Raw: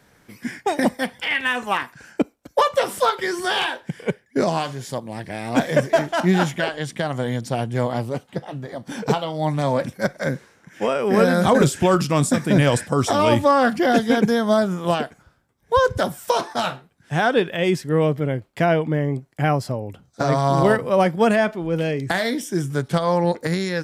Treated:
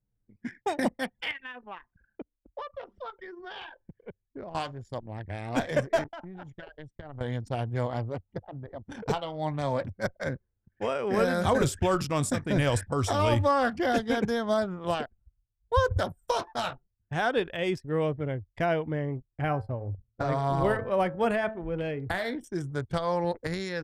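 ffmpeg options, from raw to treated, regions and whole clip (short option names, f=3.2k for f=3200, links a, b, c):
-filter_complex "[0:a]asettb=1/sr,asplit=3[a][b][c];[a]atrim=end=1.314[d];[b]atrim=start=1.31:end=4.55,asetpts=PTS-STARTPTS,afade=t=in:d=0.004:c=qsin,afade=t=out:st=3.236:d=0.004:c=qsin,lowpass=f=5.6k:w=0.5412,lowpass=f=5.6k:w=1.3066,acompressor=threshold=-37dB:ratio=2:attack=3.2:release=140:knee=1:detection=peak[e];[c]atrim=start=4.546[f];[d][e]acrossfade=d=0.004:c1=hsin:c2=qsin[g];[g][f]acrossfade=d=0.004:c1=qsin:c2=hsin,asettb=1/sr,asplit=3[h][i][j];[h]atrim=end=6.044[k];[i]atrim=start=6.04:end=7.21,asetpts=PTS-STARTPTS,afade=t=in:d=0.004:c=qsin,afade=t=out:st=1.166:d=0.004:c=qsin,agate=range=-33dB:threshold=-28dB:ratio=3:release=100:detection=peak,aecho=1:1:6.9:0.31,atrim=end_sample=51597,acompressor=threshold=-29dB:ratio=8:attack=3.2:release=140:knee=1:detection=peak[l];[j]atrim=start=7.206[m];[k][l]acrossfade=d=0.004:c1=hsin:c2=qsin[n];[n][m]acrossfade=d=0.004:c1=qsin:c2=hsin,asettb=1/sr,asplit=3[o][p][q];[o]atrim=end=19.274[r];[p]atrim=start=19.27:end=22.44,asetpts=PTS-STARTPTS,afade=t=in:d=0.004:c=qsin,afade=t=out:st=3.166:d=0.004:c=qsin,equalizer=f=5.9k:t=o:w=1:g=-9.5,bandreject=f=110.2:t=h:w=4,bandreject=f=220.4:t=h:w=4,bandreject=f=330.6:t=h:w=4,bandreject=f=440.8:t=h:w=4,bandreject=f=551:t=h:w=4,bandreject=f=661.2:t=h:w=4,bandreject=f=771.4:t=h:w=4,bandreject=f=881.6:t=h:w=4,bandreject=f=991.8:t=h:w=4,bandreject=f=1.102k:t=h:w=4,bandreject=f=1.2122k:t=h:w=4,bandreject=f=1.3224k:t=h:w=4,bandreject=f=1.4326k:t=h:w=4,bandreject=f=1.5428k:t=h:w=4,bandreject=f=1.653k:t=h:w=4,bandreject=f=1.7632k:t=h:w=4[s];[q]atrim=start=22.436[t];[r][s]acrossfade=d=0.004:c1=hsin:c2=qsin[u];[u][t]acrossfade=d=0.004:c1=qsin:c2=hsin,equalizer=f=96:w=3.9:g=10.5,anlmdn=25.1,asubboost=boost=7.5:cutoff=58,volume=-7.5dB"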